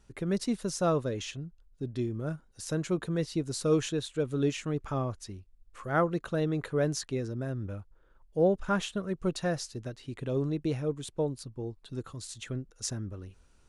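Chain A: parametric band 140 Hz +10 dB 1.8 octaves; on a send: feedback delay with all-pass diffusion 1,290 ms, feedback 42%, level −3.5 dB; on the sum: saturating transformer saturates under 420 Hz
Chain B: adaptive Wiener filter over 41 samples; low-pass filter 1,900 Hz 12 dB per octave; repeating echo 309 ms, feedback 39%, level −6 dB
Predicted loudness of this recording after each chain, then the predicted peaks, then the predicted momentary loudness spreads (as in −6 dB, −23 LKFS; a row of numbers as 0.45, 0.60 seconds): −27.0, −32.5 LKFS; −9.5, −14.5 dBFS; 5, 12 LU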